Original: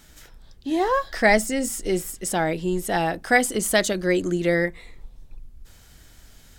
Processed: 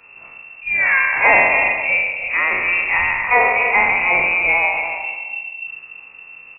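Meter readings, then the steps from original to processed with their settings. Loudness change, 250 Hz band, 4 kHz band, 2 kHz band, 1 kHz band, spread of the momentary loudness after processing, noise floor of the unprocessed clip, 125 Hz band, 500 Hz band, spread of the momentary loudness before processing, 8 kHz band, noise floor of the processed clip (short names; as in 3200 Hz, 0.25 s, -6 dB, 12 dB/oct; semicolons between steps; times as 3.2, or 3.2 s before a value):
+7.5 dB, -13.0 dB, n/a, +12.5 dB, +7.0 dB, 14 LU, -51 dBFS, -10.0 dB, -2.0 dB, 8 LU, under -40 dB, -42 dBFS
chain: spectral trails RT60 1.37 s; soft clip -7 dBFS, distortion -21 dB; outdoor echo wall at 50 m, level -9 dB; inverted band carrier 2700 Hz; on a send: reverse echo 42 ms -13.5 dB; on the sum: gain +3 dB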